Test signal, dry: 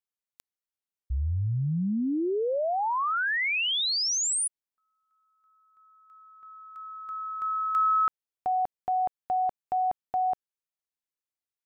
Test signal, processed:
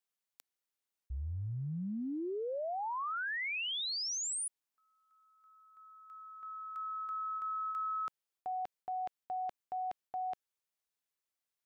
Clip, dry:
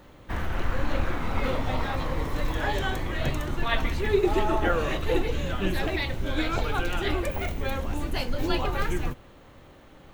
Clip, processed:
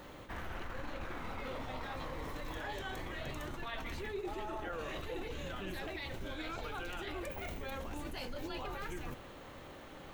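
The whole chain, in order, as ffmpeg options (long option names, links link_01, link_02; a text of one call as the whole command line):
ffmpeg -i in.wav -af "lowshelf=frequency=220:gain=-7,areverse,acompressor=threshold=-39dB:ratio=6:attack=0.23:release=145:detection=peak,areverse,volume=2.5dB" out.wav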